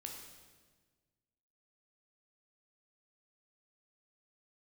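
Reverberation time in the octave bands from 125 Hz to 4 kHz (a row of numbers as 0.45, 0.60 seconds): 2.0, 1.8, 1.6, 1.3, 1.3, 1.3 seconds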